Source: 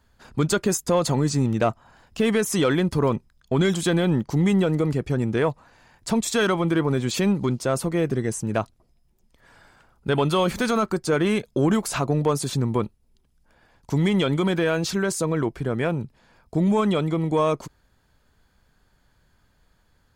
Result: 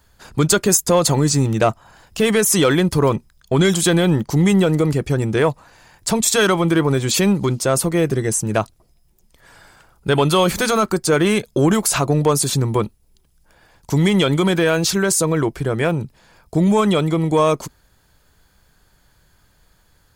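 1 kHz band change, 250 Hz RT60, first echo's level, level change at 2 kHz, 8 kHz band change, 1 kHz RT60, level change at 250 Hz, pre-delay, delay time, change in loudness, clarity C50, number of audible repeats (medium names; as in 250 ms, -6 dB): +6.0 dB, no reverb, no echo, +6.5 dB, +11.5 dB, no reverb, +4.5 dB, no reverb, no echo, +6.0 dB, no reverb, no echo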